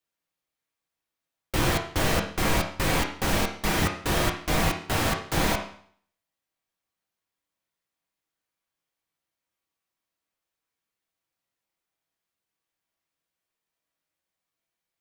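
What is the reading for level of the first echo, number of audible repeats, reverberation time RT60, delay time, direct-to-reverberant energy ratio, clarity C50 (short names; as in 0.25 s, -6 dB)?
none, none, 0.55 s, none, 1.0 dB, 7.5 dB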